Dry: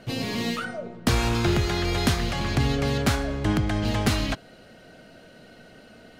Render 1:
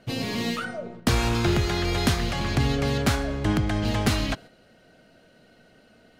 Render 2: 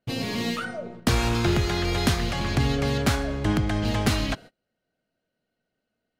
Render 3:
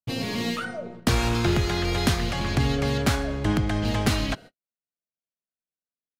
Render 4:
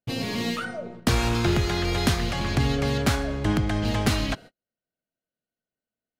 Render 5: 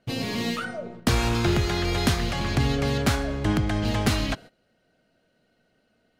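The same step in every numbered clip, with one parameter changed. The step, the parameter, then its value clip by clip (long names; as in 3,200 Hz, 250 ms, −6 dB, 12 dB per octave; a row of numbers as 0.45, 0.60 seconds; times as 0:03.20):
noise gate, range: −7, −32, −59, −45, −19 decibels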